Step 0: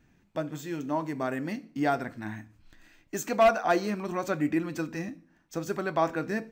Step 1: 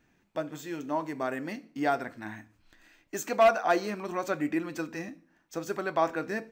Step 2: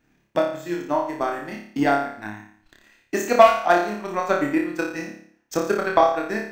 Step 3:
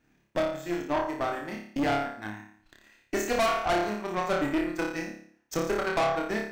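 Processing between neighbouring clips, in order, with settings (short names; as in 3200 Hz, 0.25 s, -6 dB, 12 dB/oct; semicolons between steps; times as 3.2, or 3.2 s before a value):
tone controls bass -8 dB, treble -1 dB
transient shaper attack +12 dB, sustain -6 dB; flutter echo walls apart 4.9 m, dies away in 0.57 s
tube stage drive 22 dB, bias 0.6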